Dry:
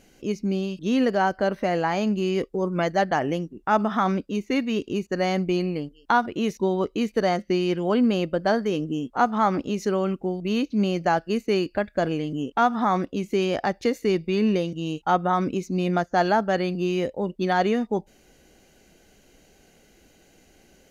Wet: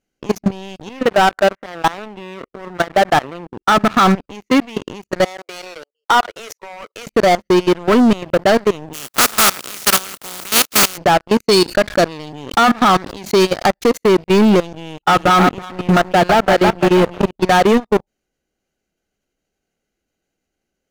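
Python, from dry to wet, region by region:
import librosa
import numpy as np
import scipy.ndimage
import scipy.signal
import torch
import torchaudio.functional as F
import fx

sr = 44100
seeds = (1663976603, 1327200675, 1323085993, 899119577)

y = fx.chain(x, sr, fx.steep_lowpass(hz=2700.0, slope=36),
    fx.low_shelf(hz=210.0, db=-11.0), at=(0.89, 3.72))
y = fx.chain(y, sr, fx.steep_highpass(hz=470.0, slope=48),
    fx.peak_eq(hz=3300.0, db=-7.0, octaves=1.1), at=(5.25, 7.07))
y = fx.spec_flatten(y, sr, power=0.16, at=(8.93, 10.96), fade=0.02)
y = fx.highpass(y, sr, hz=120.0, slope=24, at=(8.93, 10.96), fade=0.02)
y = fx.chain(y, sr, fx.highpass(hz=44.0, slope=12),
    fx.peak_eq(hz=4300.0, db=13.5, octaves=0.39),
    fx.sustainer(db_per_s=120.0), at=(11.46, 13.66))
y = fx.chain(y, sr, fx.peak_eq(hz=5500.0, db=-9.5, octaves=0.55),
    fx.echo_feedback(ms=328, feedback_pct=27, wet_db=-7), at=(14.73, 17.31))
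y = fx.peak_eq(y, sr, hz=1300.0, db=7.5, octaves=0.25)
y = fx.level_steps(y, sr, step_db=23)
y = fx.leveller(y, sr, passes=5)
y = F.gain(torch.from_numpy(y), 1.0).numpy()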